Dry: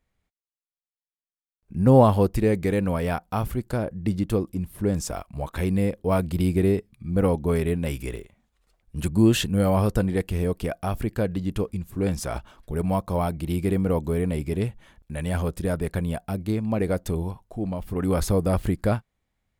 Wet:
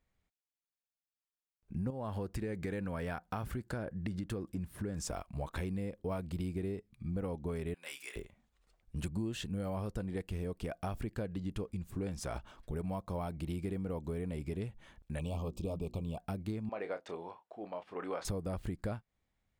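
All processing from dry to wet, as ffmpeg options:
ffmpeg -i in.wav -filter_complex "[0:a]asettb=1/sr,asplit=3[link_01][link_02][link_03];[link_01]atrim=end=1.904[link_04];[link_02]atrim=start=1.9:end=5.03,asetpts=PTS-STARTPTS,afade=type=in:duration=0.004:curve=qsin,afade=type=out:start_time=3.126:duration=0.004:curve=qsin,highpass=44,equalizer=frequency=1600:width_type=o:width=0.53:gain=6.5,acompressor=threshold=-24dB:ratio=2.5:attack=3.2:release=140:knee=1:detection=peak[link_05];[link_03]atrim=start=5.026[link_06];[link_04][link_05]acrossfade=duration=0.004:curve1=hsin:curve2=qsin[link_07];[link_07][link_06]acrossfade=duration=0.004:curve1=qsin:curve2=hsin,asettb=1/sr,asplit=3[link_08][link_09][link_10];[link_08]atrim=end=7.744[link_11];[link_09]atrim=start=7.74:end=8.16,asetpts=PTS-STARTPTS,afade=type=in:duration=0.004:curve=qsin,afade=type=out:start_time=0.416:duration=0.004:curve=qsin,highpass=1300,asplit=2[link_12][link_13];[link_13]adelay=29,volume=-9dB[link_14];[link_12][link_14]amix=inputs=2:normalize=0,atrim=end_sample=18522[link_15];[link_10]atrim=start=8.156[link_16];[link_11][link_15]acrossfade=duration=0.004:curve1=hsin:curve2=qsin[link_17];[link_17][link_16]acrossfade=duration=0.004:curve1=qsin:curve2=hsin,asettb=1/sr,asplit=3[link_18][link_19][link_20];[link_18]atrim=end=15.194[link_21];[link_19]atrim=start=15.19:end=16.18,asetpts=PTS-STARTPTS,afade=type=in:duration=0.004:curve=qsin,afade=type=out:start_time=0.986:duration=0.004:curve=qsin,asuperstop=centerf=1700:order=12:qfactor=1.5,equalizer=frequency=10000:width=4.9:gain=-14.5,bandreject=frequency=60:width_type=h:width=6,bandreject=frequency=120:width_type=h:width=6,bandreject=frequency=180:width_type=h:width=6,bandreject=frequency=240:width_type=h:width=6,bandreject=frequency=300:width_type=h:width=6,bandreject=frequency=360:width_type=h:width=6[link_22];[link_20]atrim=start=16.176[link_23];[link_21][link_22]acrossfade=duration=0.004:curve1=hsin:curve2=qsin[link_24];[link_24][link_23]acrossfade=duration=0.004:curve1=qsin:curve2=hsin,asettb=1/sr,asplit=3[link_25][link_26][link_27];[link_25]atrim=end=16.694[link_28];[link_26]atrim=start=16.69:end=18.25,asetpts=PTS-STARTPTS,afade=type=in:duration=0.004:curve=qsin,afade=type=out:start_time=1.556:duration=0.004:curve=qsin,highpass=580,lowpass=3100,asplit=2[link_29][link_30];[link_30]adelay=29,volume=-10.5dB[link_31];[link_29][link_31]amix=inputs=2:normalize=0,atrim=end_sample=68796[link_32];[link_27]atrim=start=18.246[link_33];[link_28][link_32]acrossfade=duration=0.004:curve1=hsin:curve2=qsin[link_34];[link_34][link_33]acrossfade=duration=0.004:curve1=qsin:curve2=hsin,equalizer=frequency=12000:width=2.3:gain=-10,acompressor=threshold=-30dB:ratio=6,volume=-4.5dB" out.wav

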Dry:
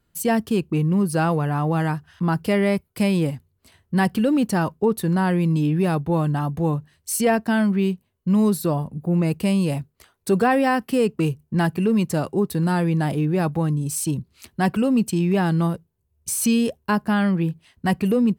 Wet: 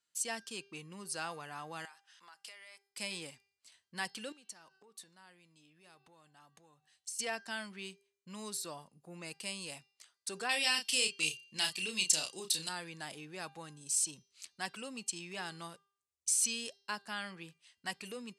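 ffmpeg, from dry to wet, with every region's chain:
ffmpeg -i in.wav -filter_complex "[0:a]asettb=1/sr,asplit=3[link_01][link_02][link_03];[link_01]atrim=end=1.854[link_04];[link_02]atrim=start=1.85:end=2.9,asetpts=PTS-STARTPTS,afade=type=in:duration=0.004:curve=qsin,afade=type=out:start_time=1.046:duration=0.004:curve=qsin,highpass=750,acompressor=threshold=-36dB:ratio=8:attack=3.2:release=140:knee=1:detection=peak[link_05];[link_03]atrim=start=2.896[link_06];[link_04][link_05]acrossfade=duration=0.004:curve1=hsin:curve2=qsin[link_07];[link_07][link_06]acrossfade=duration=0.004:curve1=qsin:curve2=hsin,asettb=1/sr,asplit=3[link_08][link_09][link_10];[link_08]atrim=end=4.324[link_11];[link_09]atrim=start=4.32:end=7.19,asetpts=PTS-STARTPTS,afade=type=in:duration=0.004:curve=qsin,afade=type=out:start_time=2.866:duration=0.004:curve=qsin,bandreject=frequency=381.5:width_type=h:width=4,bandreject=frequency=763:width_type=h:width=4,bandreject=frequency=1144.5:width_type=h:width=4,bandreject=frequency=1526:width_type=h:width=4,bandreject=frequency=1907.5:width_type=h:width=4,bandreject=frequency=2289:width_type=h:width=4,bandreject=frequency=2670.5:width_type=h:width=4,bandreject=frequency=3052:width_type=h:width=4,bandreject=frequency=3433.5:width_type=h:width=4,bandreject=frequency=3815:width_type=h:width=4,bandreject=frequency=4196.5:width_type=h:width=4,bandreject=frequency=4578:width_type=h:width=4,bandreject=frequency=4959.5:width_type=h:width=4,acompressor=threshold=-34dB:ratio=20:attack=3.2:release=140:knee=1:detection=peak[link_12];[link_10]atrim=start=7.186[link_13];[link_11][link_12]acrossfade=duration=0.004:curve1=hsin:curve2=qsin[link_14];[link_14][link_13]acrossfade=duration=0.004:curve1=qsin:curve2=hsin,asettb=1/sr,asplit=3[link_15][link_16][link_17];[link_15]atrim=end=10.494[link_18];[link_16]atrim=start=10.49:end=12.69,asetpts=PTS-STARTPTS,afade=type=in:duration=0.004:curve=qsin,afade=type=out:start_time=2.196:duration=0.004:curve=qsin,highshelf=frequency=2100:width_type=q:width=1.5:gain=10.5,asplit=2[link_19][link_20];[link_20]adelay=32,volume=-6dB[link_21];[link_19][link_21]amix=inputs=2:normalize=0,atrim=end_sample=97020[link_22];[link_17]atrim=start=12.686[link_23];[link_18][link_22]acrossfade=duration=0.004:curve1=hsin:curve2=qsin[link_24];[link_24][link_23]acrossfade=duration=0.004:curve1=qsin:curve2=hsin,lowpass=frequency=8000:width=0.5412,lowpass=frequency=8000:width=1.3066,aderivative,bandreject=frequency=397.9:width_type=h:width=4,bandreject=frequency=795.8:width_type=h:width=4,bandreject=frequency=1193.7:width_type=h:width=4,bandreject=frequency=1591.6:width_type=h:width=4,bandreject=frequency=1989.5:width_type=h:width=4,bandreject=frequency=2387.4:width_type=h:width=4,bandreject=frequency=2785.3:width_type=h:width=4,bandreject=frequency=3183.2:width_type=h:width=4,bandreject=frequency=3581.1:width_type=h:width=4,bandreject=frequency=3979:width_type=h:width=4,bandreject=frequency=4376.9:width_type=h:width=4,bandreject=frequency=4774.8:width_type=h:width=4,bandreject=frequency=5172.7:width_type=h:width=4,bandreject=frequency=5570.6:width_type=h:width=4,bandreject=frequency=5968.5:width_type=h:width=4,bandreject=frequency=6366.4:width_type=h:width=4" out.wav

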